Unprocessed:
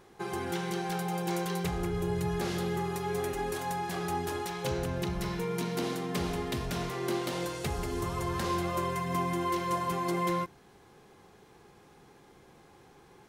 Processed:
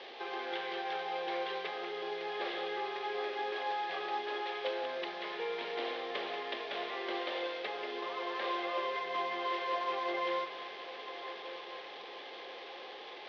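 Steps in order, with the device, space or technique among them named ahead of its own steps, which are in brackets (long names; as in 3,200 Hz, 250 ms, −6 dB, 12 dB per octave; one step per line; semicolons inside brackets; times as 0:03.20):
high-pass filter 110 Hz 6 dB per octave
digital answering machine (band-pass filter 360–3,100 Hz; linear delta modulator 32 kbit/s, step −40 dBFS; loudspeaker in its box 480–4,200 Hz, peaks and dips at 520 Hz +4 dB, 970 Hz −7 dB, 1,400 Hz −10 dB, 3,400 Hz +6 dB)
feedback delay with all-pass diffusion 1,260 ms, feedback 48%, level −12 dB
dynamic equaliser 1,400 Hz, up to +5 dB, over −51 dBFS, Q 1.2
Butterworth low-pass 6,700 Hz 48 dB per octave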